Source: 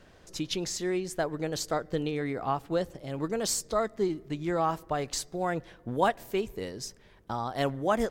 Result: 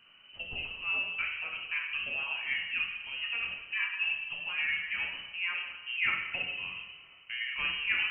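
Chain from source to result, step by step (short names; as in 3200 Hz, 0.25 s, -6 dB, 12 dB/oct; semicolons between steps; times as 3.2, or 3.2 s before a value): inverted band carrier 3000 Hz; two-slope reverb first 0.96 s, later 3.1 s, from -18 dB, DRR -1.5 dB; gain -7 dB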